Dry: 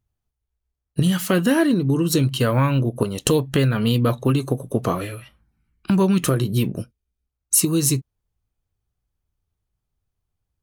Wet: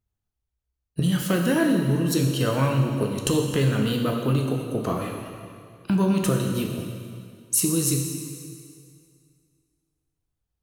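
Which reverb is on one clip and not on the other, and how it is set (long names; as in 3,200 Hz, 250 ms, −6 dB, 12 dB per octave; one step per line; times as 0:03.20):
dense smooth reverb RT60 2.2 s, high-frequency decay 0.95×, DRR 1.5 dB
level −5.5 dB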